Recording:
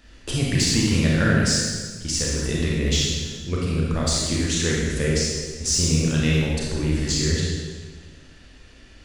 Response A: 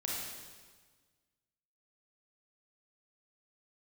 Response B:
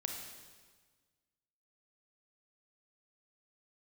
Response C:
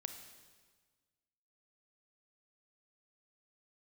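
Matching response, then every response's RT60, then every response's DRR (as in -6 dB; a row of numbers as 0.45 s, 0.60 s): A; 1.5 s, 1.5 s, 1.5 s; -4.5 dB, 2.0 dB, 7.0 dB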